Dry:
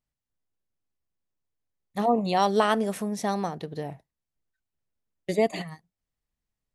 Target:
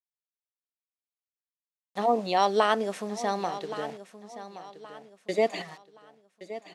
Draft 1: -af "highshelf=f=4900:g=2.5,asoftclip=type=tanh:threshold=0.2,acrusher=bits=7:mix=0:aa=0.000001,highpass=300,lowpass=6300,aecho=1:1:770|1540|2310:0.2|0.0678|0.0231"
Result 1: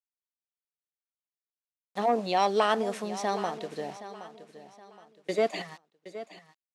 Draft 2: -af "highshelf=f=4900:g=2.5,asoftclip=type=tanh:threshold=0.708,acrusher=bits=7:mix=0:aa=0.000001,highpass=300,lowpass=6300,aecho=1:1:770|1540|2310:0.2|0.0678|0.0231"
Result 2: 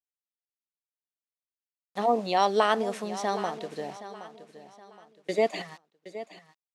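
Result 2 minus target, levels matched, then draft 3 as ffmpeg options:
echo 352 ms early
-af "highshelf=f=4900:g=2.5,asoftclip=type=tanh:threshold=0.708,acrusher=bits=7:mix=0:aa=0.000001,highpass=300,lowpass=6300,aecho=1:1:1122|2244|3366:0.2|0.0678|0.0231"

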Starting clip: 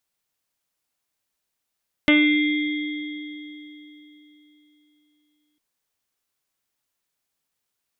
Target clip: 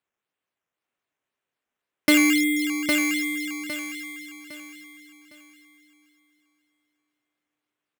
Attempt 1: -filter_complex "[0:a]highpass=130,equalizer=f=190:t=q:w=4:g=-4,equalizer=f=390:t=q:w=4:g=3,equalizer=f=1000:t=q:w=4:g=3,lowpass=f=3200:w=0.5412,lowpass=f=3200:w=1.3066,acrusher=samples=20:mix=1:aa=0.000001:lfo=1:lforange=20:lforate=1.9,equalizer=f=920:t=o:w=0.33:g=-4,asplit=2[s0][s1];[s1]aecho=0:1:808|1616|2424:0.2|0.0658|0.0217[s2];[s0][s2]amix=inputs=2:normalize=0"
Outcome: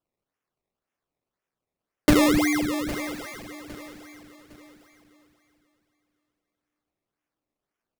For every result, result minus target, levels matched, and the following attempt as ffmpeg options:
echo-to-direct -10 dB; decimation with a swept rate: distortion +5 dB
-filter_complex "[0:a]highpass=130,equalizer=f=190:t=q:w=4:g=-4,equalizer=f=390:t=q:w=4:g=3,equalizer=f=1000:t=q:w=4:g=3,lowpass=f=3200:w=0.5412,lowpass=f=3200:w=1.3066,acrusher=samples=20:mix=1:aa=0.000001:lfo=1:lforange=20:lforate=1.9,equalizer=f=920:t=o:w=0.33:g=-4,asplit=2[s0][s1];[s1]aecho=0:1:808|1616|2424|3232:0.631|0.208|0.0687|0.0227[s2];[s0][s2]amix=inputs=2:normalize=0"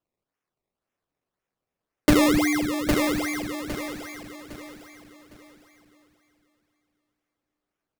decimation with a swept rate: distortion +5 dB
-filter_complex "[0:a]highpass=130,equalizer=f=190:t=q:w=4:g=-4,equalizer=f=390:t=q:w=4:g=3,equalizer=f=1000:t=q:w=4:g=3,lowpass=f=3200:w=0.5412,lowpass=f=3200:w=1.3066,acrusher=samples=7:mix=1:aa=0.000001:lfo=1:lforange=7:lforate=1.9,equalizer=f=920:t=o:w=0.33:g=-4,asplit=2[s0][s1];[s1]aecho=0:1:808|1616|2424|3232:0.631|0.208|0.0687|0.0227[s2];[s0][s2]amix=inputs=2:normalize=0"

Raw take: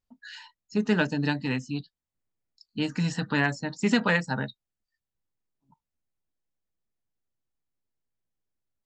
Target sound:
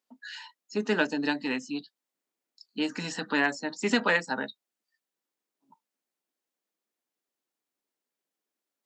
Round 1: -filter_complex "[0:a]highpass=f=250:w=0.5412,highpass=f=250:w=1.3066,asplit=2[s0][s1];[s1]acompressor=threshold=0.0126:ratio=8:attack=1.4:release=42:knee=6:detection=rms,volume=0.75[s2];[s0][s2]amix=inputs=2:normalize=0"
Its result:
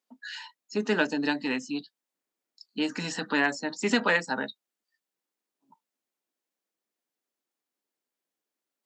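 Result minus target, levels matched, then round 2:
compression: peak gain reduction -10 dB
-filter_complex "[0:a]highpass=f=250:w=0.5412,highpass=f=250:w=1.3066,asplit=2[s0][s1];[s1]acompressor=threshold=0.00335:ratio=8:attack=1.4:release=42:knee=6:detection=rms,volume=0.75[s2];[s0][s2]amix=inputs=2:normalize=0"

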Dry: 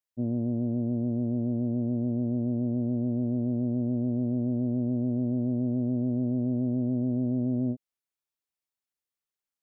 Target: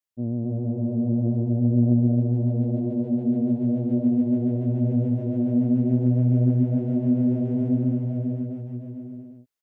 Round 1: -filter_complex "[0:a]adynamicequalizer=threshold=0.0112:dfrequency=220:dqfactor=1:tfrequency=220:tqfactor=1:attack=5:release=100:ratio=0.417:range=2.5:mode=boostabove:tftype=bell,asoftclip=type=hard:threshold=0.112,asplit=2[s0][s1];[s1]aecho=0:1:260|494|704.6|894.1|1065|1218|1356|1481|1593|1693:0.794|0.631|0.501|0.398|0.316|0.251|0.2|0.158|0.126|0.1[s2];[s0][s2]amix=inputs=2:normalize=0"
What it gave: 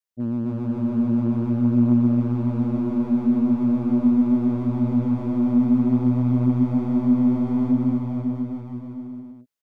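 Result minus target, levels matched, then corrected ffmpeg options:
125 Hz band -5.0 dB
-filter_complex "[0:a]adynamicequalizer=threshold=0.0112:dfrequency=93:dqfactor=1:tfrequency=93:tqfactor=1:attack=5:release=100:ratio=0.417:range=2.5:mode=boostabove:tftype=bell,asoftclip=type=hard:threshold=0.112,asplit=2[s0][s1];[s1]aecho=0:1:260|494|704.6|894.1|1065|1218|1356|1481|1593|1693:0.794|0.631|0.501|0.398|0.316|0.251|0.2|0.158|0.126|0.1[s2];[s0][s2]amix=inputs=2:normalize=0"

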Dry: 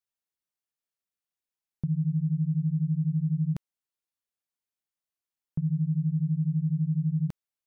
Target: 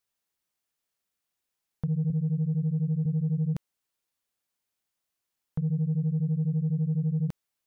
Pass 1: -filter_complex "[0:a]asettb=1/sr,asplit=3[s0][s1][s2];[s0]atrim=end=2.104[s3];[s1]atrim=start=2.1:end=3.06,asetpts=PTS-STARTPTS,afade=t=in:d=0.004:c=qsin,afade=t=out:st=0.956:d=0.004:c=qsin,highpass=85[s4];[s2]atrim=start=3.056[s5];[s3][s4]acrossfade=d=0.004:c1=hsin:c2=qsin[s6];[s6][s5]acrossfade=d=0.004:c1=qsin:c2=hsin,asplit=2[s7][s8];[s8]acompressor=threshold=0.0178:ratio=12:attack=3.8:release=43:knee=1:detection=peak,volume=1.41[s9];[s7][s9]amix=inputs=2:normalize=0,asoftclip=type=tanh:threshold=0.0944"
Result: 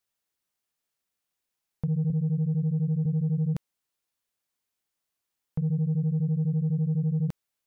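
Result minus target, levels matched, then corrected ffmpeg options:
compression: peak gain reduction -6.5 dB
-filter_complex "[0:a]asettb=1/sr,asplit=3[s0][s1][s2];[s0]atrim=end=2.104[s3];[s1]atrim=start=2.1:end=3.06,asetpts=PTS-STARTPTS,afade=t=in:d=0.004:c=qsin,afade=t=out:st=0.956:d=0.004:c=qsin,highpass=85[s4];[s2]atrim=start=3.056[s5];[s3][s4]acrossfade=d=0.004:c1=hsin:c2=qsin[s6];[s6][s5]acrossfade=d=0.004:c1=qsin:c2=hsin,asplit=2[s7][s8];[s8]acompressor=threshold=0.00794:ratio=12:attack=3.8:release=43:knee=1:detection=peak,volume=1.41[s9];[s7][s9]amix=inputs=2:normalize=0,asoftclip=type=tanh:threshold=0.0944"

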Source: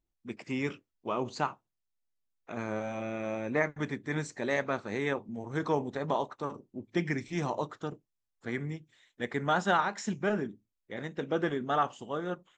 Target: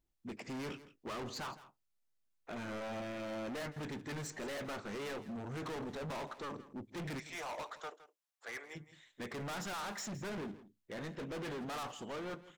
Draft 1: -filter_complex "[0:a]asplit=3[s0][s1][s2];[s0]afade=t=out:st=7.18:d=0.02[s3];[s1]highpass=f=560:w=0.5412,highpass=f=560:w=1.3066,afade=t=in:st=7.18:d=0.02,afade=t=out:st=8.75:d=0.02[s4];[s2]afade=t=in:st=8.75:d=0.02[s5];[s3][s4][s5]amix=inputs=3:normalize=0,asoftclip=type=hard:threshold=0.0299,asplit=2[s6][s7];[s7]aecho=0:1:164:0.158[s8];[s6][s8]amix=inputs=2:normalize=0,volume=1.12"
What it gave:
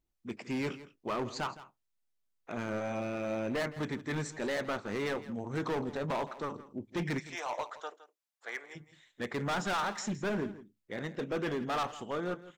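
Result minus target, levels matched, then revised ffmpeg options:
hard clipper: distortion -5 dB
-filter_complex "[0:a]asplit=3[s0][s1][s2];[s0]afade=t=out:st=7.18:d=0.02[s3];[s1]highpass=f=560:w=0.5412,highpass=f=560:w=1.3066,afade=t=in:st=7.18:d=0.02,afade=t=out:st=8.75:d=0.02[s4];[s2]afade=t=in:st=8.75:d=0.02[s5];[s3][s4][s5]amix=inputs=3:normalize=0,asoftclip=type=hard:threshold=0.00891,asplit=2[s6][s7];[s7]aecho=0:1:164:0.158[s8];[s6][s8]amix=inputs=2:normalize=0,volume=1.12"

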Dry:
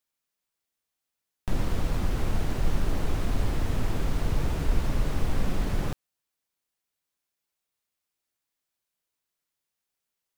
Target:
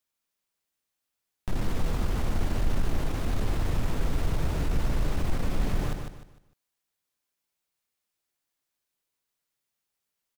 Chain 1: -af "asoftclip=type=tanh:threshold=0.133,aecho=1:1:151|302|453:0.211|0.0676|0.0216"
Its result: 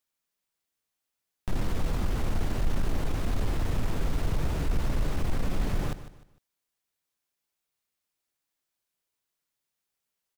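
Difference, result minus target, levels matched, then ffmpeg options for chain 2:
echo-to-direct -7.5 dB
-af "asoftclip=type=tanh:threshold=0.133,aecho=1:1:151|302|453|604:0.501|0.16|0.0513|0.0164"

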